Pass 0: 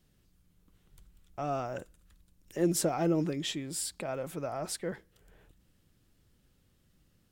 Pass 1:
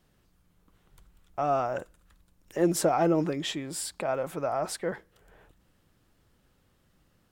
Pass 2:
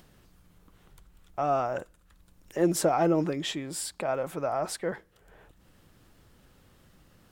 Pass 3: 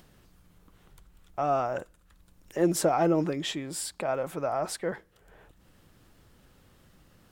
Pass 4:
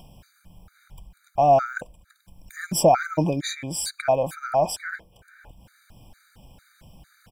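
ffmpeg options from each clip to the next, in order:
-af "equalizer=f=940:w=0.57:g=9"
-af "acompressor=mode=upward:threshold=-49dB:ratio=2.5"
-af anull
-af "aecho=1:1:1.3:0.55,afftfilt=real='re*gt(sin(2*PI*2.2*pts/sr)*(1-2*mod(floor(b*sr/1024/1200),2)),0)':imag='im*gt(sin(2*PI*2.2*pts/sr)*(1-2*mod(floor(b*sr/1024/1200),2)),0)':win_size=1024:overlap=0.75,volume=8dB"

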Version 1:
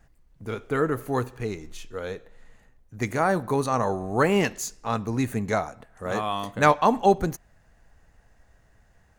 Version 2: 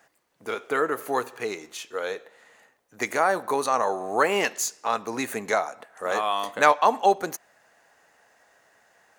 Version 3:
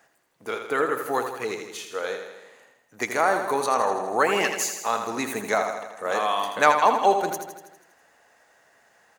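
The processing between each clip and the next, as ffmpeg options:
-filter_complex "[0:a]highpass=490,asplit=2[a][b];[b]acompressor=threshold=-32dB:ratio=6,volume=1.5dB[c];[a][c]amix=inputs=2:normalize=0"
-af "aecho=1:1:81|162|243|324|405|486|567|648:0.422|0.253|0.152|0.0911|0.0547|0.0328|0.0197|0.0118"

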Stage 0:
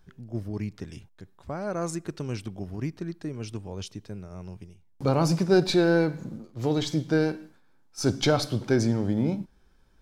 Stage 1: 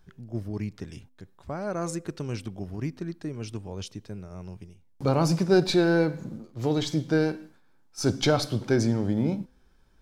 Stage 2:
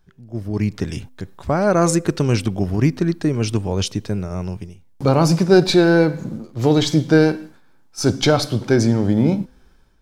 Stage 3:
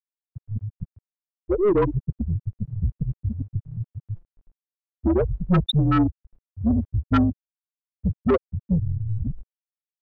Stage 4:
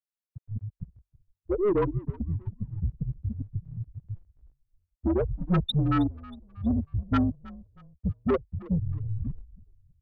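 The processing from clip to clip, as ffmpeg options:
-af "bandreject=f=254.5:t=h:w=4,bandreject=f=509:t=h:w=4"
-af "dynaudnorm=f=220:g=5:m=16.5dB,volume=-1dB"
-filter_complex "[0:a]afreqshift=-210,afftfilt=real='re*gte(hypot(re,im),0.708)':imag='im*gte(hypot(re,im),0.708)':win_size=1024:overlap=0.75,asplit=2[a][b];[b]highpass=f=720:p=1,volume=24dB,asoftclip=type=tanh:threshold=-2dB[c];[a][c]amix=inputs=2:normalize=0,lowpass=f=5.1k:p=1,volume=-6dB,volume=-7.5dB"
-filter_complex "[0:a]asplit=4[a][b][c][d];[b]adelay=318,afreqshift=-48,volume=-20dB[e];[c]adelay=636,afreqshift=-96,volume=-28.4dB[f];[d]adelay=954,afreqshift=-144,volume=-36.8dB[g];[a][e][f][g]amix=inputs=4:normalize=0,volume=-5dB"

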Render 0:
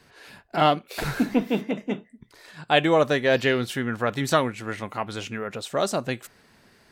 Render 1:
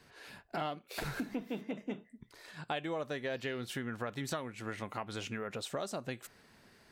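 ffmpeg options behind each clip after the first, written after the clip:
-af "acompressor=threshold=-30dB:ratio=6,volume=-5dB"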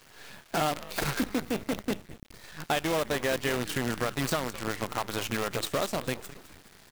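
-filter_complex "[0:a]asplit=6[a][b][c][d][e][f];[b]adelay=209,afreqshift=-100,volume=-12.5dB[g];[c]adelay=418,afreqshift=-200,volume=-18.7dB[h];[d]adelay=627,afreqshift=-300,volume=-24.9dB[i];[e]adelay=836,afreqshift=-400,volume=-31.1dB[j];[f]adelay=1045,afreqshift=-500,volume=-37.3dB[k];[a][g][h][i][j][k]amix=inputs=6:normalize=0,acrusher=bits=7:dc=4:mix=0:aa=0.000001,volume=8dB"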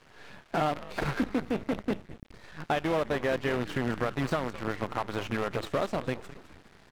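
-filter_complex "[0:a]aemphasis=mode=reproduction:type=75fm,acrossover=split=3100[a][b];[b]aeval=exprs='clip(val(0),-1,0.00316)':c=same[c];[a][c]amix=inputs=2:normalize=0"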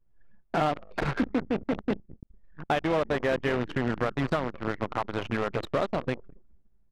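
-af "anlmdn=2.51,volume=2dB"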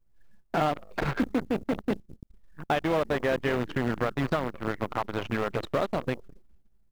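-af "acrusher=bits=8:mode=log:mix=0:aa=0.000001"

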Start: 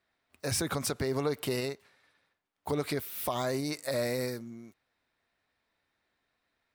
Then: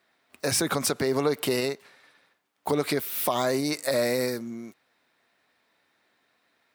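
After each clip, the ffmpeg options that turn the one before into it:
-filter_complex "[0:a]asplit=2[a][b];[b]acompressor=threshold=-39dB:ratio=6,volume=-1dB[c];[a][c]amix=inputs=2:normalize=0,highpass=170,volume=4.5dB"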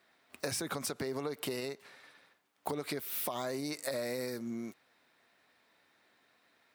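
-af "acompressor=threshold=-34dB:ratio=6"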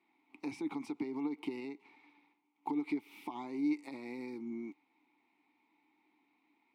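-filter_complex "[0:a]asplit=3[a][b][c];[a]bandpass=f=300:t=q:w=8,volume=0dB[d];[b]bandpass=f=870:t=q:w=8,volume=-6dB[e];[c]bandpass=f=2.24k:t=q:w=8,volume=-9dB[f];[d][e][f]amix=inputs=3:normalize=0,volume=9dB"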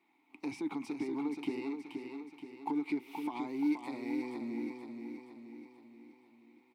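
-filter_complex "[0:a]asplit=2[a][b];[b]asoftclip=type=hard:threshold=-39dB,volume=-11dB[c];[a][c]amix=inputs=2:normalize=0,aecho=1:1:476|952|1428|1904|2380|2856:0.501|0.256|0.13|0.0665|0.0339|0.0173"

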